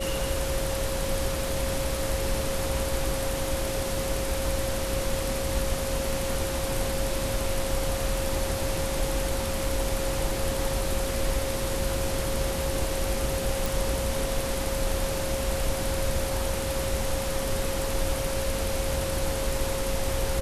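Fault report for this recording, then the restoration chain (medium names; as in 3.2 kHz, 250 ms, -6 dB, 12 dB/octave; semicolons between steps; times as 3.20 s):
whine 540 Hz -31 dBFS
13.66 s: pop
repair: de-click; band-stop 540 Hz, Q 30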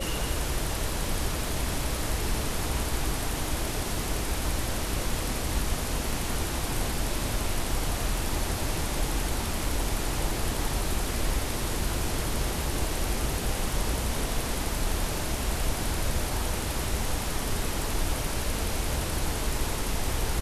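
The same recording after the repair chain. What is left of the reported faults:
nothing left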